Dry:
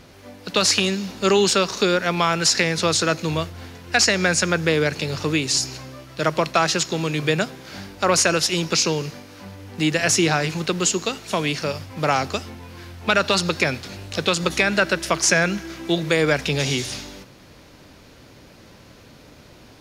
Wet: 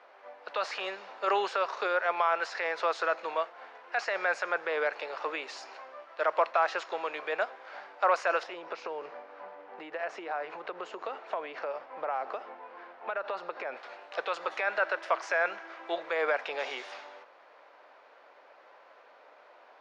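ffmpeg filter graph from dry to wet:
ffmpeg -i in.wav -filter_complex "[0:a]asettb=1/sr,asplit=3[link_01][link_02][link_03];[link_01]atrim=end=8.434[link_04];[link_02]atrim=start=8.43:end=13.77,asetpts=PTS-STARTPTS,afade=type=in:duration=0.004:curve=qsin,afade=type=out:start_time=5.336:duration=0.004:curve=qsin,lowpass=frequency=2900:poles=1,acompressor=threshold=-26dB:ratio=12:attack=3.2:release=140:knee=1:detection=peak,lowshelf=frequency=480:gain=10[link_05];[link_03]atrim=start=13.766[link_06];[link_04][link_05]acrossfade=duration=0.004:curve1=hsin:curve2=qsin[link_07];[link_07][link_06]acrossfade=duration=0.004:curve1=qsin:curve2=hsin,highpass=frequency=610:width=0.5412,highpass=frequency=610:width=1.3066,alimiter=limit=-13.5dB:level=0:latency=1:release=13,lowpass=1400" out.wav

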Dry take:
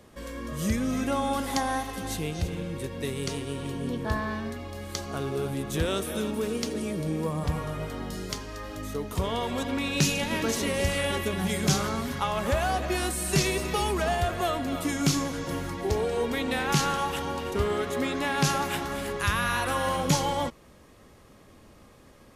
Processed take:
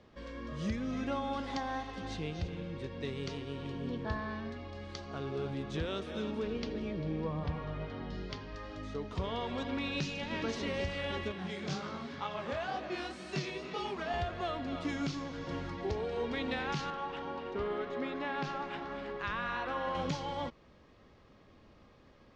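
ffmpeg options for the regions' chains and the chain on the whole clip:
ffmpeg -i in.wav -filter_complex "[0:a]asettb=1/sr,asplit=3[link_01][link_02][link_03];[link_01]atrim=end=6.434[link_04];[link_02]atrim=start=6.43:end=8.56,asetpts=PTS-STARTPTS,afade=type=in:duration=0.004:curve=qsin,afade=type=out:start_time=2.126:duration=0.004:curve=qsin,lowpass=4600,bandreject=frequency=1300:width=16,aeval=exprs='val(0)+0.00891*(sin(2*PI*50*n/s)+sin(2*PI*2*50*n/s)/2+sin(2*PI*3*50*n/s)/3+sin(2*PI*4*50*n/s)/4+sin(2*PI*5*50*n/s)/5)':channel_layout=same[link_05];[link_03]atrim=start=8.556[link_06];[link_04][link_05]acrossfade=duration=0.004:curve1=hsin:curve2=qsin[link_07];[link_07][link_06]acrossfade=duration=0.004:curve1=qsin:curve2=hsin,asettb=1/sr,asplit=3[link_08][link_09][link_10];[link_08]atrim=end=11.324[link_11];[link_09]atrim=start=11.32:end=14.14,asetpts=PTS-STARTPTS,afade=type=in:duration=0.004:curve=qsin,afade=type=out:start_time=2.816:duration=0.004:curve=qsin,highpass=140,flanger=delay=18.5:depth=7.8:speed=2[link_12];[link_10]atrim=start=14.136[link_13];[link_11][link_12]acrossfade=duration=0.004:curve1=hsin:curve2=qsin[link_14];[link_14][link_13]acrossfade=duration=0.004:curve1=qsin:curve2=hsin,asettb=1/sr,asplit=3[link_15][link_16][link_17];[link_15]atrim=end=16.904[link_18];[link_16]atrim=start=16.9:end=19.95,asetpts=PTS-STARTPTS,afade=type=in:duration=0.004:curve=qsin,afade=type=out:start_time=3.046:duration=0.004:curve=qsin,lowpass=frequency=1900:poles=1,equalizer=frequency=87:width=0.9:gain=-12.5[link_19];[link_17]atrim=start=19.946[link_20];[link_18][link_19]acrossfade=duration=0.004:curve1=hsin:curve2=qsin[link_21];[link_21][link_20]acrossfade=duration=0.004:curve1=qsin:curve2=hsin,alimiter=limit=-17dB:level=0:latency=1:release=483,lowpass=frequency=5000:width=0.5412,lowpass=frequency=5000:width=1.3066,volume=-6.5dB" out.wav

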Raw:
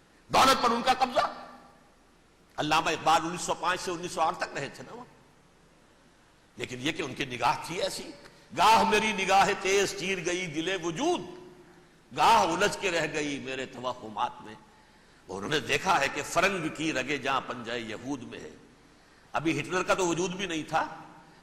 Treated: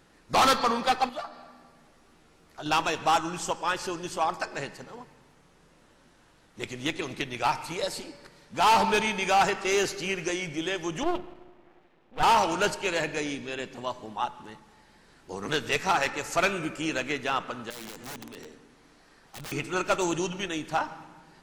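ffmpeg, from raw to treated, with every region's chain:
ffmpeg -i in.wav -filter_complex "[0:a]asettb=1/sr,asplit=3[link_01][link_02][link_03];[link_01]atrim=end=1.094[link_04];[link_02]atrim=start=1.09:end=2.66,asetpts=PTS-STARTPTS,afade=type=in:duration=0.004:curve=qsin,afade=type=out:start_time=1.566:duration=0.004:curve=qsin,acompressor=threshold=-55dB:ratio=1.5:attack=3.2:release=140:knee=1:detection=peak,asplit=2[link_05][link_06];[link_06]adelay=13,volume=-5dB[link_07];[link_05][link_07]amix=inputs=2:normalize=0,atrim=end_sample=69237[link_08];[link_03]atrim=start=2.656[link_09];[link_04][link_08]acrossfade=duration=0.004:curve1=hsin:curve2=qsin[link_10];[link_10][link_09]acrossfade=duration=0.004:curve1=qsin:curve2=hsin,asettb=1/sr,asplit=3[link_11][link_12][link_13];[link_11]atrim=end=11.034[link_14];[link_12]atrim=start=11.03:end=12.23,asetpts=PTS-STARTPTS,afade=type=in:duration=0.004:curve=qsin,afade=type=out:start_time=1.196:duration=0.004:curve=qsin,highpass=200,equalizer=frequency=360:width_type=q:width=4:gain=4,equalizer=frequency=510:width_type=q:width=4:gain=4,equalizer=frequency=740:width_type=q:width=4:gain=4,equalizer=frequency=1500:width_type=q:width=4:gain=-7,lowpass=frequency=2900:width=0.5412,lowpass=frequency=2900:width=1.3066,bandreject=frequency=60:width_type=h:width=6,bandreject=frequency=120:width_type=h:width=6,bandreject=frequency=180:width_type=h:width=6,bandreject=frequency=240:width_type=h:width=6,bandreject=frequency=300:width_type=h:width=6,bandreject=frequency=360:width_type=h:width=6,bandreject=frequency=420:width_type=h:width=6,aeval=exprs='max(val(0),0)':channel_layout=same[link_15];[link_13]atrim=start=12.226[link_16];[link_14][link_15]acrossfade=duration=0.004:curve1=hsin:curve2=qsin[link_17];[link_17][link_16]acrossfade=duration=0.004:curve1=qsin:curve2=hsin,asettb=1/sr,asplit=3[link_18][link_19][link_20];[link_18]atrim=end=17.704[link_21];[link_19]atrim=start=17.7:end=19.52,asetpts=PTS-STARTPTS,afade=type=in:duration=0.004:curve=qsin,afade=type=out:start_time=1.816:duration=0.004:curve=qsin,equalizer=frequency=81:width=0.89:gain=-6,acrossover=split=330|3000[link_22][link_23][link_24];[link_23]acompressor=threshold=-44dB:ratio=6:attack=3.2:release=140:knee=2.83:detection=peak[link_25];[link_22][link_25][link_24]amix=inputs=3:normalize=0,aeval=exprs='(mod(53.1*val(0)+1,2)-1)/53.1':channel_layout=same[link_26];[link_20]atrim=start=19.516[link_27];[link_21][link_26]acrossfade=duration=0.004:curve1=hsin:curve2=qsin[link_28];[link_28][link_27]acrossfade=duration=0.004:curve1=qsin:curve2=hsin" out.wav

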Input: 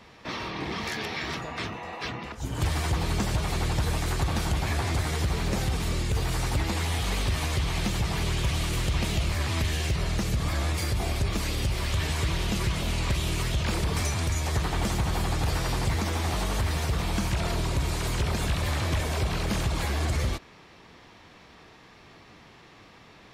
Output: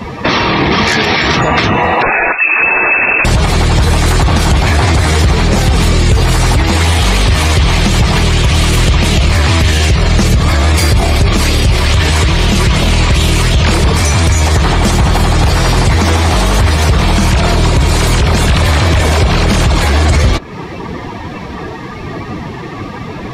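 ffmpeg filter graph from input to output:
ffmpeg -i in.wav -filter_complex "[0:a]asettb=1/sr,asplit=3[link_01][link_02][link_03];[link_01]atrim=end=2.024[link_04];[link_02]atrim=start=2.02:end=3.25,asetpts=PTS-STARTPTS,afade=type=in:duration=0.004:curve=qsin,afade=type=out:start_time=1.226:duration=0.004:curve=qsin,tiltshelf=frequency=1500:gain=-7.5,lowpass=frequency=2300:width_type=q:width=0.5098,lowpass=frequency=2300:width_type=q:width=0.6013,lowpass=frequency=2300:width_type=q:width=0.9,lowpass=frequency=2300:width_type=q:width=2.563,afreqshift=-2700[link_05];[link_03]atrim=start=3.246[link_06];[link_04][link_05]acrossfade=duration=0.004:curve1=hsin:curve2=qsin[link_07];[link_07][link_06]acrossfade=duration=0.004:curve1=qsin:curve2=hsin,afftdn=noise_reduction=15:noise_floor=-47,acompressor=threshold=-39dB:ratio=5,alimiter=level_in=35dB:limit=-1dB:release=50:level=0:latency=1,volume=-1dB" out.wav

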